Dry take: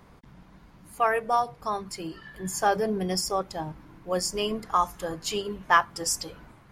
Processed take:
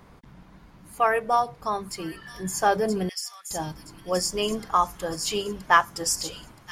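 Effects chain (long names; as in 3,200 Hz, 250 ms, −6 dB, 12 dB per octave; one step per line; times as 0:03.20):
0:03.09–0:03.51: four-pole ladder high-pass 1,600 Hz, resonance 25%
on a send: delay with a high-pass on its return 974 ms, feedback 41%, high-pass 4,100 Hz, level −3.5 dB
on the sum: level +2 dB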